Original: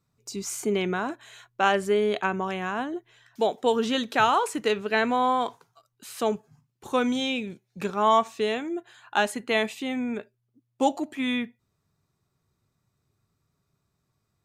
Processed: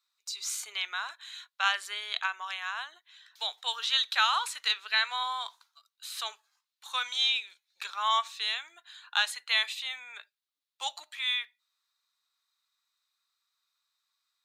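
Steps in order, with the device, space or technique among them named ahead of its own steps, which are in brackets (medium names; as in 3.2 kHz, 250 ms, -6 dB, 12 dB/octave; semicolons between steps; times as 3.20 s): headphones lying on a table (high-pass 1.1 kHz 24 dB/octave; peaking EQ 3.9 kHz +12 dB 0.53 oct); 5.23–6.12 s: dynamic bell 2.1 kHz, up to -6 dB, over -46 dBFS, Q 0.93; trim -2 dB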